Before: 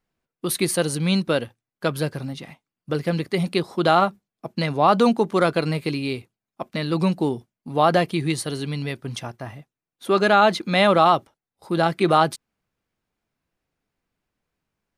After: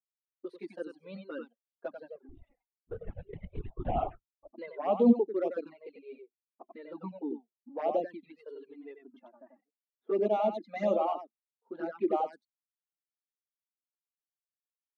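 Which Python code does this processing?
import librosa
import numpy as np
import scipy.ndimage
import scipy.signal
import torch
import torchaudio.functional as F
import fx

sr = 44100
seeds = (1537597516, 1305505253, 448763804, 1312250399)

y = np.minimum(x, 2.0 * 10.0 ** (-11.5 / 20.0) - x)
y = scipy.signal.sosfilt(scipy.signal.ellip(4, 1.0, 50, 220.0, 'highpass', fs=sr, output='sos'), y)
y = fx.high_shelf(y, sr, hz=2200.0, db=-8.0)
y = y + 10.0 ** (-3.0 / 20.0) * np.pad(y, (int(92 * sr / 1000.0), 0))[:len(y)]
y = fx.lpc_vocoder(y, sr, seeds[0], excitation='whisper', order=10, at=(2.29, 4.51))
y = fx.env_flanger(y, sr, rest_ms=5.1, full_db=-15.0)
y = fx.dereverb_blind(y, sr, rt60_s=0.72)
y = fx.env_lowpass(y, sr, base_hz=2000.0, full_db=-19.5)
y = fx.spectral_expand(y, sr, expansion=1.5)
y = y * 10.0 ** (-2.5 / 20.0)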